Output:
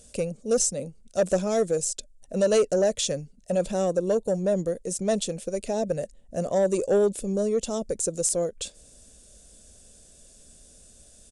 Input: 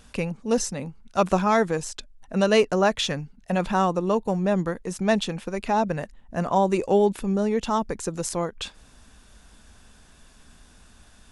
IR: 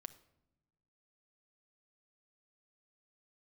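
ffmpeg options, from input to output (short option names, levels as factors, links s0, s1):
-af "firequalizer=gain_entry='entry(290,0);entry(560,10);entry(880,-13);entry(3000,-2);entry(7600,14)':delay=0.05:min_phase=1,asoftclip=type=tanh:threshold=0.316,aresample=22050,aresample=44100,volume=0.631"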